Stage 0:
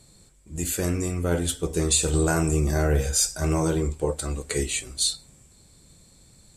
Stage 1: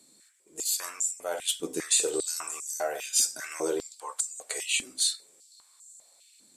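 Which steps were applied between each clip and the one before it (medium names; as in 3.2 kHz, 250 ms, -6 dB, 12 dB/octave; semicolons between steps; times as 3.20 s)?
tilt EQ +2 dB/octave; step-sequenced high-pass 5 Hz 260–7000 Hz; trim -8 dB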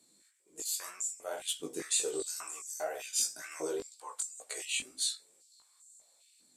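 chorus 2 Hz, delay 16 ms, depth 4.9 ms; trim -3.5 dB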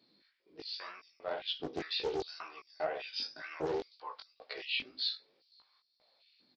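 resampled via 11.025 kHz; loudspeaker Doppler distortion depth 0.46 ms; trim +1.5 dB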